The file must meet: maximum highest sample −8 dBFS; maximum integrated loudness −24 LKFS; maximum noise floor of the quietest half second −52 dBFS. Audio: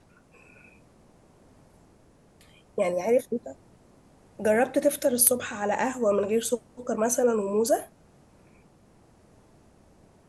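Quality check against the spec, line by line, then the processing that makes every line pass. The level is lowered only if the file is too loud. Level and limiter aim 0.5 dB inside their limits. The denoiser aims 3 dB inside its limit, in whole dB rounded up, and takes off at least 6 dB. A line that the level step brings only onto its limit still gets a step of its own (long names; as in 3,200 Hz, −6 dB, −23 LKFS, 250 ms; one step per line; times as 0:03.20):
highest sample −3.5 dBFS: out of spec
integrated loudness −25.5 LKFS: in spec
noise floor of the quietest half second −58 dBFS: in spec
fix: brickwall limiter −8.5 dBFS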